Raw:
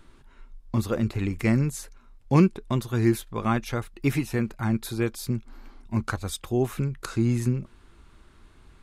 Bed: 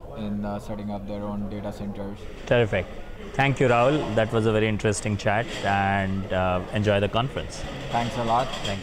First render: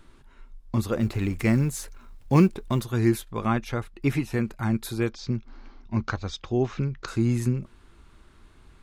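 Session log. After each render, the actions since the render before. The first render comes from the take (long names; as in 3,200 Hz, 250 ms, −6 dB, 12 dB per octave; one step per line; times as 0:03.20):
0:01.00–0:02.84: mu-law and A-law mismatch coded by mu
0:03.46–0:04.33: high-shelf EQ 6,000 Hz −8 dB
0:05.09–0:07.08: Butterworth low-pass 6,300 Hz 48 dB per octave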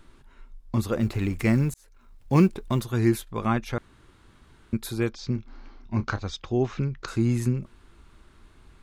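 0:01.74–0:02.45: fade in
0:03.78–0:04.73: fill with room tone
0:05.33–0:06.23: double-tracking delay 29 ms −10 dB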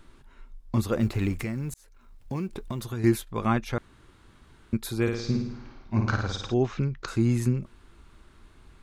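0:01.33–0:03.04: downward compressor 5 to 1, threshold −28 dBFS
0:05.02–0:06.54: flutter between parallel walls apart 9.2 metres, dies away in 0.76 s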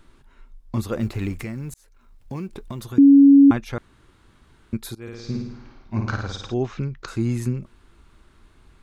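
0:02.98–0:03.51: beep over 279 Hz −7 dBFS
0:04.95–0:05.41: fade in, from −24 dB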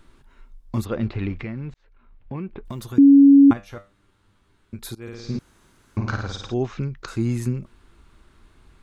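0:00.84–0:02.65: low-pass filter 4,400 Hz → 2,700 Hz 24 dB per octave
0:03.53–0:04.79: tuned comb filter 99 Hz, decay 0.27 s, mix 80%
0:05.39–0:05.97: fill with room tone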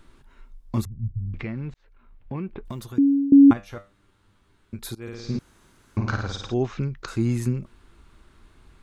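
0:00.85–0:01.34: inverse Chebyshev low-pass filter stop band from 640 Hz, stop band 70 dB
0:02.63–0:03.32: fade out, to −20 dB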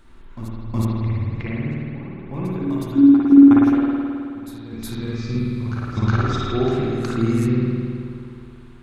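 on a send: backwards echo 366 ms −10 dB
on the sum: spring reverb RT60 2.4 s, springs 53 ms, chirp 30 ms, DRR −5.5 dB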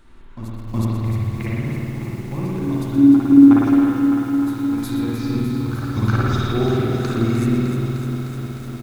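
single-tap delay 122 ms −10.5 dB
feedback echo at a low word length 304 ms, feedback 80%, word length 7 bits, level −8 dB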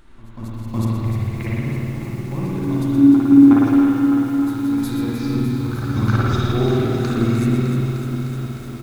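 delay that plays each chunk backwards 107 ms, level −10.5 dB
backwards echo 190 ms −13.5 dB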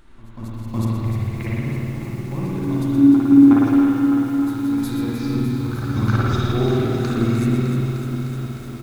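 level −1 dB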